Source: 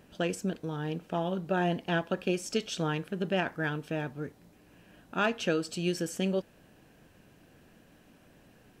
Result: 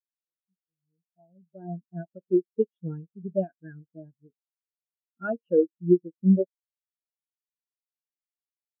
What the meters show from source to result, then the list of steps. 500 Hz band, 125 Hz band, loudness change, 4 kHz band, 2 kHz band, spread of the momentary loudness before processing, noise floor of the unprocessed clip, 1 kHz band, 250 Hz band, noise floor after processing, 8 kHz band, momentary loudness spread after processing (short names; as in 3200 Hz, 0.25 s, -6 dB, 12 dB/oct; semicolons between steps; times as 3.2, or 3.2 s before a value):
+4.5 dB, +2.0 dB, +5.5 dB, under -40 dB, -12.5 dB, 6 LU, -60 dBFS, -10.0 dB, +5.0 dB, under -85 dBFS, under -35 dB, 17 LU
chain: opening faded in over 2.51 s; bands offset in time highs, lows 40 ms, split 5600 Hz; spectral expander 4:1; gain +7.5 dB